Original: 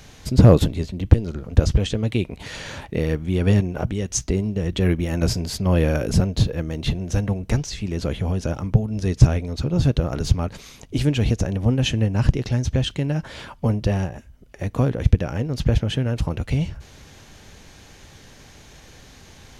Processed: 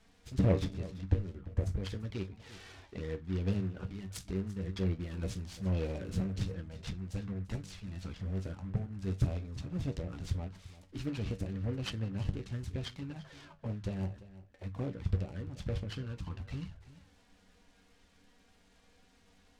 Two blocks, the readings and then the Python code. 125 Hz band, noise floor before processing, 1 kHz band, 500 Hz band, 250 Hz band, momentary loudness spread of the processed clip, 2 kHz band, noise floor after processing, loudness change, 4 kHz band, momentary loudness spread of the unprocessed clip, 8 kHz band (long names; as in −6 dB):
−15.5 dB, −47 dBFS, −17.5 dB, −16.5 dB, −15.0 dB, 11 LU, −16.5 dB, −65 dBFS, −15.5 dB, −17.0 dB, 9 LU, −21.0 dB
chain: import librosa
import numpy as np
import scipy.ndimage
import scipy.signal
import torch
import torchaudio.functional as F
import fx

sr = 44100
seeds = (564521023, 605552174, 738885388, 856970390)

p1 = fx.spec_erase(x, sr, start_s=1.33, length_s=0.5, low_hz=2400.0, high_hz=5500.0)
p2 = fx.hum_notches(p1, sr, base_hz=50, count=3)
p3 = fx.dynamic_eq(p2, sr, hz=3800.0, q=1.1, threshold_db=-47.0, ratio=4.0, max_db=3)
p4 = fx.comb_fb(p3, sr, f0_hz=95.0, decay_s=0.19, harmonics='all', damping=0.0, mix_pct=80)
p5 = fx.env_flanger(p4, sr, rest_ms=4.8, full_db=-22.0)
p6 = fx.air_absorb(p5, sr, metres=58.0)
p7 = p6 + fx.echo_single(p6, sr, ms=343, db=-17.0, dry=0)
p8 = fx.noise_mod_delay(p7, sr, seeds[0], noise_hz=1300.0, depth_ms=0.038)
y = F.gain(torch.from_numpy(p8), -9.0).numpy()